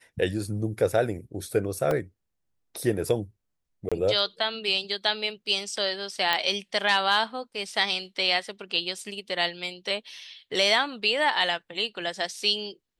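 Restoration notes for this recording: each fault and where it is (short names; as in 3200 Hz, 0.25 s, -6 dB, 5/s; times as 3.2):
1.91 gap 2.2 ms
3.89–3.92 gap 26 ms
6.33 pop -10 dBFS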